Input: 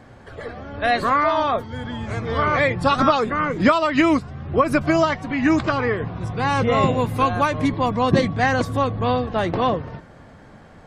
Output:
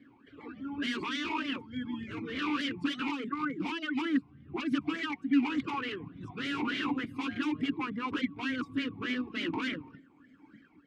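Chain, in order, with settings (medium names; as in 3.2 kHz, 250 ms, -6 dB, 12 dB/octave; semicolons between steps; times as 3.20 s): reverb removal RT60 2 s; level rider gain up to 11 dB; wavefolder -15.5 dBFS; talking filter i-u 3.4 Hz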